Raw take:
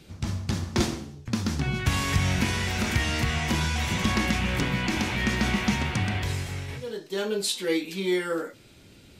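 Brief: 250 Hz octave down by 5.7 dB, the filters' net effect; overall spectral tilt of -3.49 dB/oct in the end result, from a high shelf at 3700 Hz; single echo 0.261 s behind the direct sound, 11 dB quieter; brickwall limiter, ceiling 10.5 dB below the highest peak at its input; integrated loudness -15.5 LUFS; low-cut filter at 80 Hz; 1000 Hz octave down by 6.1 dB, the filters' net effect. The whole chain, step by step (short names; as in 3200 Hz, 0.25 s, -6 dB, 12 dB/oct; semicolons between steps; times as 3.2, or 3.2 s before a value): HPF 80 Hz; bell 250 Hz -7.5 dB; bell 1000 Hz -8 dB; high shelf 3700 Hz +4 dB; limiter -20.5 dBFS; echo 0.261 s -11 dB; gain +15 dB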